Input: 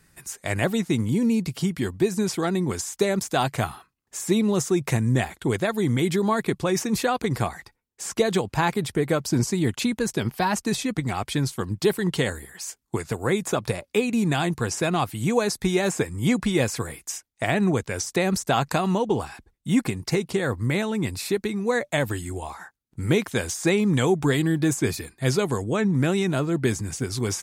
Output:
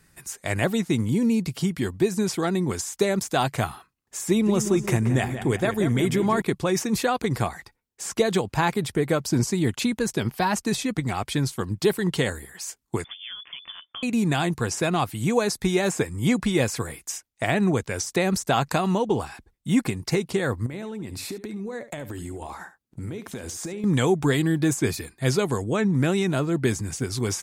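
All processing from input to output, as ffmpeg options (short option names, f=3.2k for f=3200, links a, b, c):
-filter_complex "[0:a]asettb=1/sr,asplit=3[a][b][c];[a]atrim=end=4.284[d];[b]atrim=start=4.28:end=6.42,asetpts=PTS-STARTPTS,afade=t=in:d=0.004:c=qsin,afade=t=out:st=2.136:d=0.004:c=qsin,bandreject=f=4.1k:w=7,aeval=exprs='val(0)+0.00224*(sin(2*PI*50*n/s)+sin(2*PI*2*50*n/s)/2+sin(2*PI*3*50*n/s)/3+sin(2*PI*4*50*n/s)/4+sin(2*PI*5*50*n/s)/5)':c=same,asplit=2[e][f];[f]adelay=178,lowpass=f=3.1k:p=1,volume=-9dB,asplit=2[g][h];[h]adelay=178,lowpass=f=3.1k:p=1,volume=0.5,asplit=2[i][j];[j]adelay=178,lowpass=f=3.1k:p=1,volume=0.5,asplit=2[k][l];[l]adelay=178,lowpass=f=3.1k:p=1,volume=0.5,asplit=2[m][n];[n]adelay=178,lowpass=f=3.1k:p=1,volume=0.5,asplit=2[o][p];[p]adelay=178,lowpass=f=3.1k:p=1,volume=0.5[q];[e][g][i][k][m][o][q]amix=inputs=7:normalize=0,atrim=end_sample=94374[r];[c]atrim=start=6.416[s];[d][r]acrossfade=d=0.004:c1=hsin:c2=qsin[t];[t][s]acrossfade=d=0.004:c1=qsin:c2=hsin,asettb=1/sr,asplit=3[u][v][w];[u]atrim=end=13.044[x];[v]atrim=start=13.04:end=14.03,asetpts=PTS-STARTPTS,afade=t=in:d=0.004:c=qsin,afade=t=out:st=0.986:d=0.004:c=qsin,acompressor=threshold=-35dB:ratio=6:attack=3.2:release=140:knee=1:detection=peak,lowpass=f=3.1k:t=q:w=0.5098,lowpass=f=3.1k:t=q:w=0.6013,lowpass=f=3.1k:t=q:w=0.9,lowpass=f=3.1k:t=q:w=2.563,afreqshift=-3600[y];[w]atrim=start=14.026[z];[x][y]acrossfade=d=0.004:c1=hsin:c2=qsin[aa];[aa][z]acrossfade=d=0.004:c1=qsin:c2=hsin,asettb=1/sr,asplit=3[ab][ac][ad];[ab]atrim=end=20.664[ae];[ac]atrim=start=20.66:end=23.84,asetpts=PTS-STARTPTS,afade=t=in:d=0.004:c=qsin,afade=t=out:st=3.176:d=0.004:c=qsin,equalizer=f=290:w=0.48:g=6,acompressor=threshold=-30dB:ratio=12:attack=3.2:release=140:knee=1:detection=peak,aecho=1:1:71:0.2,atrim=end_sample=140238[af];[ad]atrim=start=23.836[ag];[ae][af]acrossfade=d=0.004:c1=hsin:c2=qsin[ah];[ah][ag]acrossfade=d=0.004:c1=qsin:c2=hsin"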